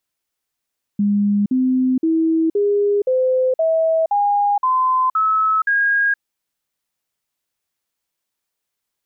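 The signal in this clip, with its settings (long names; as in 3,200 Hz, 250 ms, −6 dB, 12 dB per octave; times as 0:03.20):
stepped sweep 204 Hz up, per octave 3, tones 10, 0.47 s, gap 0.05 s −13.5 dBFS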